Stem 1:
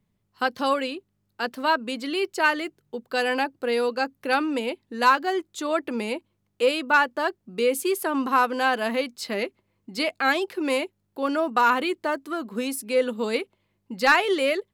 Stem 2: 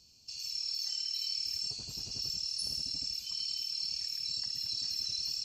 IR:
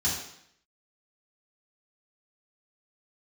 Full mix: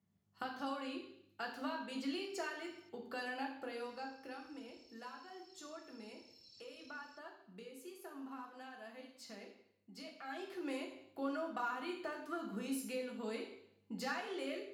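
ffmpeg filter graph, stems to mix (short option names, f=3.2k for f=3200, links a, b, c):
-filter_complex "[0:a]highpass=120,bandreject=f=60:t=h:w=6,bandreject=f=120:t=h:w=6,bandreject=f=180:t=h:w=6,acompressor=threshold=-31dB:ratio=6,volume=-1.5dB,afade=t=out:st=3.64:d=0.76:silence=0.334965,afade=t=in:st=10.22:d=0.21:silence=0.334965,asplit=3[a][b][c];[b]volume=-8dB[d];[1:a]acrossover=split=4000[e][f];[f]acompressor=threshold=-43dB:ratio=4:attack=1:release=60[g];[e][g]amix=inputs=2:normalize=0,adelay=1750,volume=-15.5dB,asplit=3[h][i][j];[h]atrim=end=2.89,asetpts=PTS-STARTPTS,afade=t=out:st=2.886:d=0.004:c=hsin[k];[i]atrim=start=2.89:end=3.8,asetpts=PTS-STARTPTS,volume=0[l];[j]atrim=start=3.8,asetpts=PTS-STARTPTS,afade=t=in:d=0.004:c=hsin[m];[k][l][m]concat=n=3:v=0:a=1[n];[c]apad=whole_len=317424[o];[n][o]sidechaincompress=threshold=-58dB:ratio=8:attack=26:release=1500[p];[2:a]atrim=start_sample=2205[q];[d][q]afir=irnorm=-1:irlink=0[r];[a][p][r]amix=inputs=3:normalize=0"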